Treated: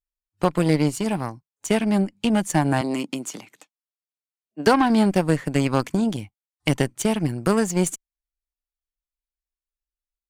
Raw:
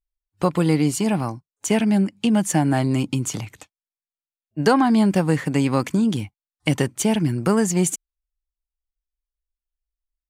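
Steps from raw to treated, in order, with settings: added harmonics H 6 -34 dB, 7 -22 dB, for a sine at -4 dBFS; 2.81–4.67 HPF 200 Hz 24 dB/oct

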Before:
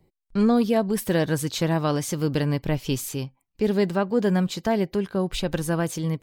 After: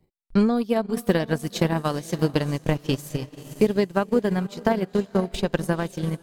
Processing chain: diffused feedback echo 0.498 s, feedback 50%, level -11 dB; transient shaper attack +10 dB, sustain -11 dB; gain -3.5 dB

